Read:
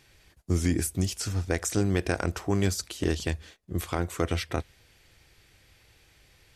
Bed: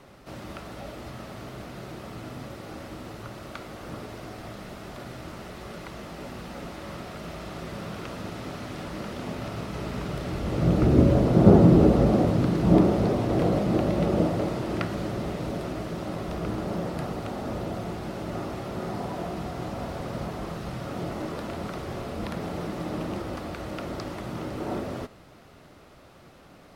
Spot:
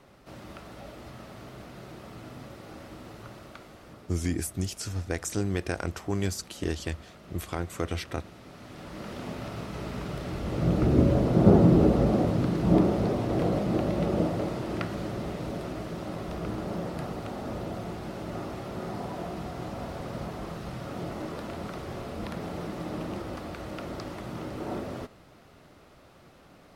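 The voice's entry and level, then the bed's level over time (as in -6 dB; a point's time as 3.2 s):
3.60 s, -3.5 dB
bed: 3.33 s -5 dB
4.04 s -12.5 dB
8.44 s -12.5 dB
9.13 s -3 dB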